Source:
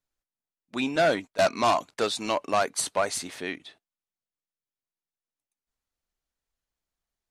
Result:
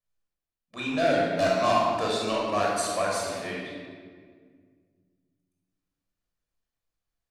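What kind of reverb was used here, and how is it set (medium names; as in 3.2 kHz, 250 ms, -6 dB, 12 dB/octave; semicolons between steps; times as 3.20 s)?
simulated room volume 2600 m³, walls mixed, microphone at 5.9 m; trim -9 dB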